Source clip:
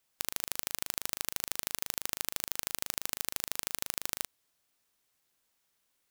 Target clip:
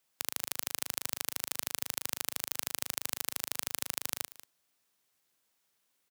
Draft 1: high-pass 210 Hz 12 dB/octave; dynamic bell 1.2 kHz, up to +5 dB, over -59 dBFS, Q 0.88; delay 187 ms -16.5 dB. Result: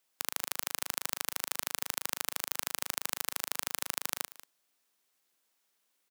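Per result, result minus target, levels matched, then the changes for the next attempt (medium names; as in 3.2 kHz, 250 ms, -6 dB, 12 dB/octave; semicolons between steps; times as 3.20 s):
125 Hz band -7.0 dB; 1 kHz band +4.0 dB
change: high-pass 91 Hz 12 dB/octave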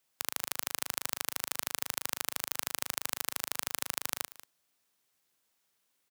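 1 kHz band +4.0 dB
remove: dynamic bell 1.2 kHz, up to +5 dB, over -59 dBFS, Q 0.88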